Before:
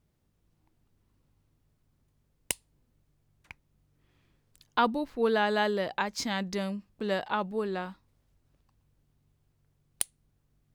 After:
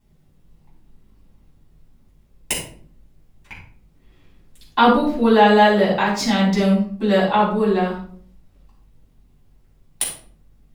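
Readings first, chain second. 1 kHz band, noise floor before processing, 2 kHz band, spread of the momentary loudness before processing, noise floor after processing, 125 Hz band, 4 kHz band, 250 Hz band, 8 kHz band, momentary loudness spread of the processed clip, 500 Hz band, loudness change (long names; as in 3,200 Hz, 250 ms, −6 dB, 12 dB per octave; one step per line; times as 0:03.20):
+13.5 dB, −73 dBFS, +10.5 dB, 9 LU, −56 dBFS, +17.0 dB, +11.0 dB, +16.0 dB, +9.0 dB, 13 LU, +12.5 dB, +13.0 dB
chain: rectangular room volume 550 cubic metres, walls furnished, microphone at 9.1 metres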